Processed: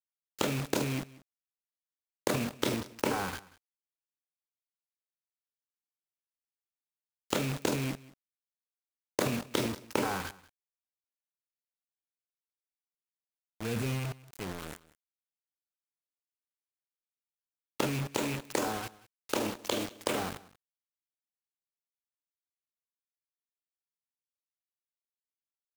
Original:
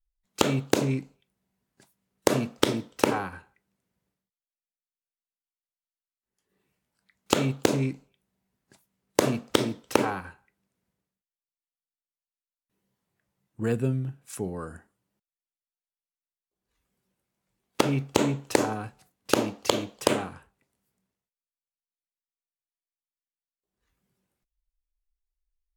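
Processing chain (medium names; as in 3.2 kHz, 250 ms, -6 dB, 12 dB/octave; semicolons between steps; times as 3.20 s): rattle on loud lows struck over -28 dBFS, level -25 dBFS; 18.08–20.19 s: bass shelf 170 Hz -9.5 dB; transient shaper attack -1 dB, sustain +11 dB; bit crusher 5-bit; delay 186 ms -21 dB; trim -8.5 dB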